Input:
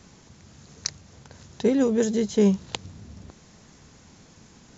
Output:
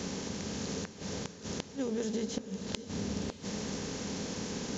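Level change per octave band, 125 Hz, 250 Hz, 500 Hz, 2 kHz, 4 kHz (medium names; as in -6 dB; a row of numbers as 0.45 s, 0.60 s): -5.5 dB, -10.0 dB, -11.5 dB, -2.5 dB, -2.0 dB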